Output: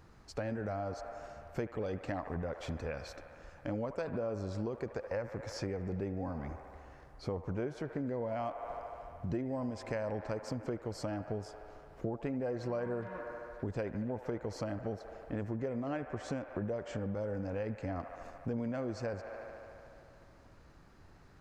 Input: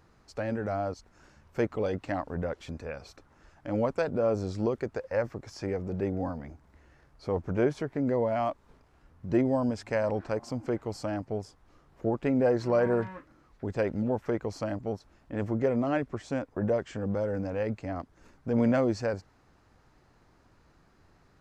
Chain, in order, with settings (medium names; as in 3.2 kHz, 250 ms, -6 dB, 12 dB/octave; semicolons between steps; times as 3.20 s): bass shelf 140 Hz +4 dB; on a send: feedback echo behind a band-pass 74 ms, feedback 82%, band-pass 1.2 kHz, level -12 dB; on the sum: compression 6:1, threshold -35 dBFS, peak gain reduction 15 dB; trim +1 dB